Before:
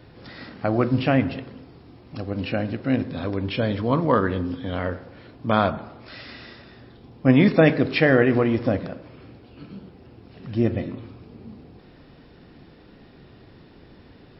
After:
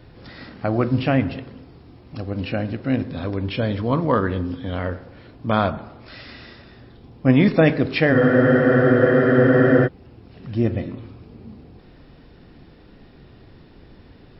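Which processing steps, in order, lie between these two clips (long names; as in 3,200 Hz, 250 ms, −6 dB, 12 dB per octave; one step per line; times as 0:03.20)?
low-shelf EQ 60 Hz +10.5 dB
frozen spectrum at 0:08.14, 1.71 s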